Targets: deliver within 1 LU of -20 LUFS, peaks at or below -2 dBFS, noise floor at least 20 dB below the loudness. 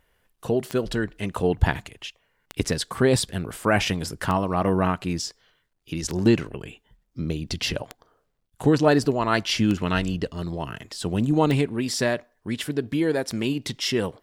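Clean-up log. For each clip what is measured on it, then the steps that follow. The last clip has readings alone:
clicks 8; loudness -24.5 LUFS; peak -5.5 dBFS; loudness target -20.0 LUFS
-> de-click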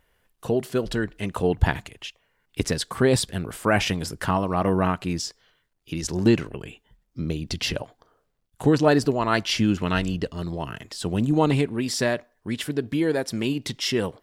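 clicks 0; loudness -24.5 LUFS; peak -5.5 dBFS; loudness target -20.0 LUFS
-> gain +4.5 dB; limiter -2 dBFS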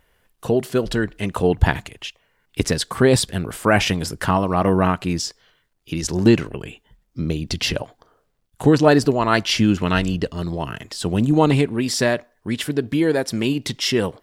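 loudness -20.0 LUFS; peak -2.0 dBFS; noise floor -67 dBFS

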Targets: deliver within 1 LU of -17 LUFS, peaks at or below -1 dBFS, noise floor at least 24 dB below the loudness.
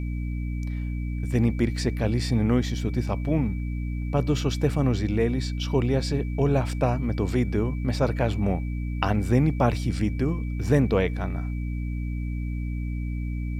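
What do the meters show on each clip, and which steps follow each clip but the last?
hum 60 Hz; harmonics up to 300 Hz; hum level -26 dBFS; steady tone 2300 Hz; tone level -47 dBFS; loudness -26.0 LUFS; peak -6.5 dBFS; loudness target -17.0 LUFS
-> notches 60/120/180/240/300 Hz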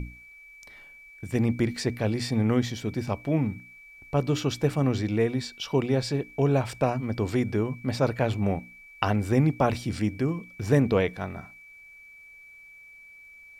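hum none; steady tone 2300 Hz; tone level -47 dBFS
-> notch 2300 Hz, Q 30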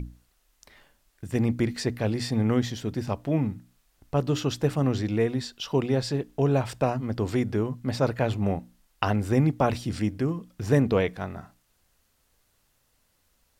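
steady tone none; loudness -27.0 LUFS; peak -6.5 dBFS; loudness target -17.0 LUFS
-> gain +10 dB; limiter -1 dBFS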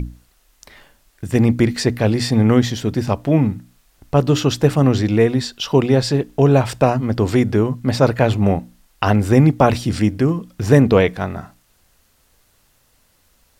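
loudness -17.0 LUFS; peak -1.0 dBFS; noise floor -59 dBFS

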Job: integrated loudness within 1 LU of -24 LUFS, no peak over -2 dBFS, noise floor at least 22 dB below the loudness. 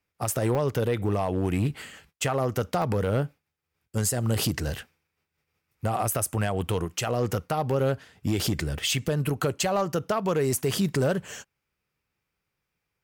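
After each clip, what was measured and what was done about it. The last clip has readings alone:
clipped 0.6%; flat tops at -17.5 dBFS; dropouts 5; longest dropout 1.6 ms; loudness -27.0 LUFS; peak -17.5 dBFS; loudness target -24.0 LUFS
-> clip repair -17.5 dBFS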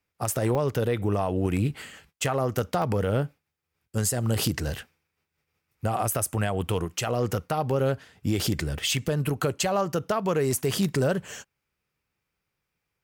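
clipped 0.0%; dropouts 5; longest dropout 1.6 ms
-> interpolate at 0.55/2.82/7.71/8.87/11.28, 1.6 ms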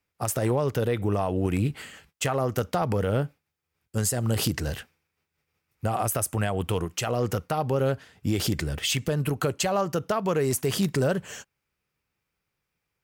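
dropouts 0; loudness -27.0 LUFS; peak -8.5 dBFS; loudness target -24.0 LUFS
-> gain +3 dB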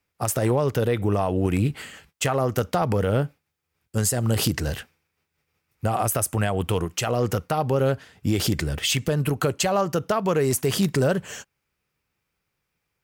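loudness -24.0 LUFS; peak -5.5 dBFS; noise floor -79 dBFS

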